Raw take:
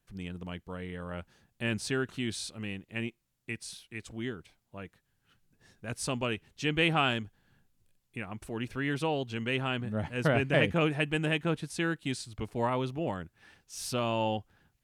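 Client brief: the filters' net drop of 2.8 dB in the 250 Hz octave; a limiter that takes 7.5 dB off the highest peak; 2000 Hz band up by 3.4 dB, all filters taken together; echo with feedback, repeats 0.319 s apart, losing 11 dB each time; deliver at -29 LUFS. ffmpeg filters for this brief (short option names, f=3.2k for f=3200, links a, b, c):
-af "equalizer=f=250:t=o:g=-4,equalizer=f=2k:t=o:g=4.5,alimiter=limit=-18dB:level=0:latency=1,aecho=1:1:319|638|957:0.282|0.0789|0.0221,volume=4dB"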